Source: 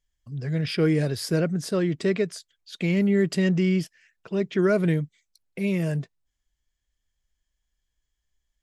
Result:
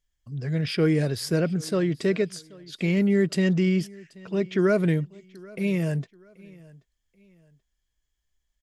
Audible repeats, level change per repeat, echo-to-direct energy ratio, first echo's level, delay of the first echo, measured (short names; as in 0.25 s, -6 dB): 2, -9.5 dB, -22.5 dB, -23.0 dB, 0.782 s